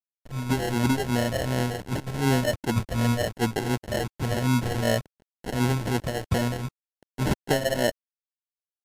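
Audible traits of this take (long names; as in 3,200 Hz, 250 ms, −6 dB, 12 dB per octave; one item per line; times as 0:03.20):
a quantiser's noise floor 6 bits, dither none
phaser sweep stages 2, 2.7 Hz, lowest notch 210–2,200 Hz
aliases and images of a low sample rate 1,200 Hz, jitter 0%
MP3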